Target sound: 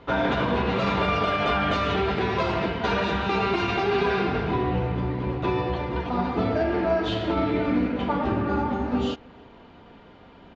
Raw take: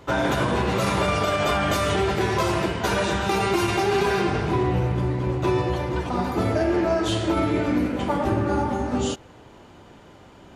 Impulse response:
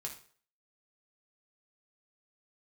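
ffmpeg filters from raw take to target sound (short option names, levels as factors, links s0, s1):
-filter_complex "[0:a]lowpass=f=4200:w=0.5412,lowpass=f=4200:w=1.3066,aecho=1:1:4.3:0.35,asplit=2[s0][s1];[s1]adelay=320.7,volume=0.0398,highshelf=f=4000:g=-7.22[s2];[s0][s2]amix=inputs=2:normalize=0,volume=0.841"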